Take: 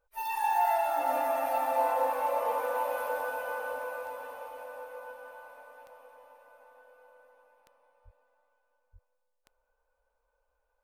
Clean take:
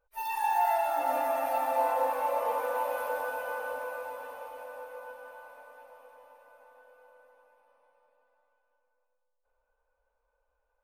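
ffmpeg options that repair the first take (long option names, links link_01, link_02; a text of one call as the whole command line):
ffmpeg -i in.wav -filter_complex "[0:a]adeclick=threshold=4,asplit=3[link_01][link_02][link_03];[link_01]afade=type=out:start_time=8.04:duration=0.02[link_04];[link_02]highpass=frequency=140:width=0.5412,highpass=frequency=140:width=1.3066,afade=type=in:start_time=8.04:duration=0.02,afade=type=out:start_time=8.16:duration=0.02[link_05];[link_03]afade=type=in:start_time=8.16:duration=0.02[link_06];[link_04][link_05][link_06]amix=inputs=3:normalize=0,asplit=3[link_07][link_08][link_09];[link_07]afade=type=out:start_time=8.92:duration=0.02[link_10];[link_08]highpass=frequency=140:width=0.5412,highpass=frequency=140:width=1.3066,afade=type=in:start_time=8.92:duration=0.02,afade=type=out:start_time=9.04:duration=0.02[link_11];[link_09]afade=type=in:start_time=9.04:duration=0.02[link_12];[link_10][link_11][link_12]amix=inputs=3:normalize=0" out.wav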